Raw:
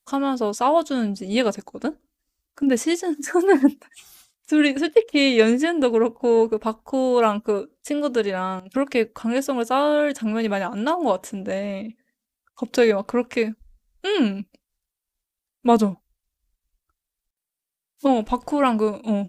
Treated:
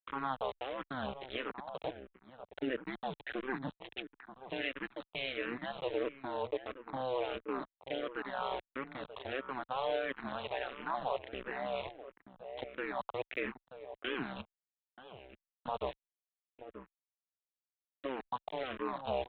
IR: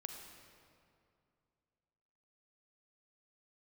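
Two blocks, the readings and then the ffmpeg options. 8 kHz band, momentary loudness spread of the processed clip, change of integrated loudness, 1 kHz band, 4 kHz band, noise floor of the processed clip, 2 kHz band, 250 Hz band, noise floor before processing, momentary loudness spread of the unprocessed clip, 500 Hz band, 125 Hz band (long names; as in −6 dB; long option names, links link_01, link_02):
below −40 dB, 16 LU, −18.0 dB, −14.0 dB, −13.5 dB, below −85 dBFS, −12.5 dB, −23.0 dB, below −85 dBFS, 9 LU, −18.0 dB, can't be measured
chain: -filter_complex "[0:a]highpass=580,agate=range=-33dB:threshold=-48dB:ratio=3:detection=peak,areverse,acompressor=threshold=-35dB:ratio=12,areverse,alimiter=level_in=14dB:limit=-24dB:level=0:latency=1:release=410,volume=-14dB,acompressor=mode=upward:threshold=-52dB:ratio=2.5,aresample=8000,aeval=exprs='val(0)*gte(abs(val(0)),0.00266)':channel_layout=same,aresample=44100,tremolo=f=130:d=0.974,asplit=2[link_01][link_02];[link_02]adelay=932.9,volume=-11dB,highshelf=frequency=4000:gain=-21[link_03];[link_01][link_03]amix=inputs=2:normalize=0,asplit=2[link_04][link_05];[link_05]afreqshift=-1.5[link_06];[link_04][link_06]amix=inputs=2:normalize=1,volume=17dB"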